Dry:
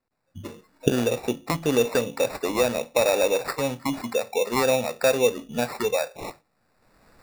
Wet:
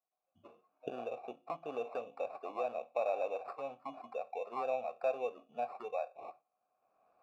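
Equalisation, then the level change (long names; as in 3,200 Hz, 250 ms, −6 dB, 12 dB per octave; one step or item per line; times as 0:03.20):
formant filter a
high-shelf EQ 2,300 Hz −9.5 dB
−2.5 dB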